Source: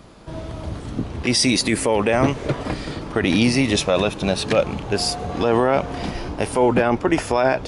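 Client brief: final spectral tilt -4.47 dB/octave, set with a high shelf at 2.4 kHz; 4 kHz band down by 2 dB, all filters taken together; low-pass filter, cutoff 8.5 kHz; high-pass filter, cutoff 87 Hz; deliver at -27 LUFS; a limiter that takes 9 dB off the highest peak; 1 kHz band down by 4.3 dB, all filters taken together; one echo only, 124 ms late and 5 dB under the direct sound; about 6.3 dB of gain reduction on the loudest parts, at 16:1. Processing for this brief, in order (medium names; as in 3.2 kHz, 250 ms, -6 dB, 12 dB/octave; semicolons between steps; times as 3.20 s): high-pass 87 Hz; low-pass 8.5 kHz; peaking EQ 1 kHz -6.5 dB; treble shelf 2.4 kHz +4.5 dB; peaking EQ 4 kHz -6.5 dB; compression 16:1, threshold -19 dBFS; peak limiter -18 dBFS; delay 124 ms -5 dB; trim +0.5 dB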